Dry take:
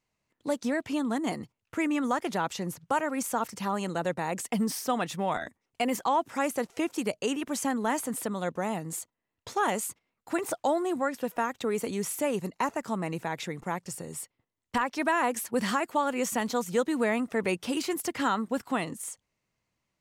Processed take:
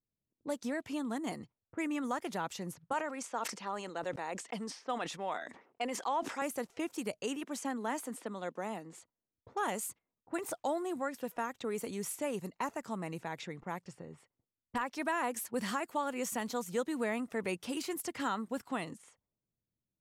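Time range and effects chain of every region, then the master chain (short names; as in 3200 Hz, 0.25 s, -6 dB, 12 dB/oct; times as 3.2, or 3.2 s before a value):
2.93–6.42 BPF 320–6900 Hz + sustainer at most 88 dB/s
7.44–8.93 HPF 200 Hz 24 dB/oct + bell 14000 Hz -5.5 dB 1.4 oct
whole clip: low-pass opened by the level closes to 360 Hz, open at -28.5 dBFS; high shelf 9500 Hz +5 dB; gain -7.5 dB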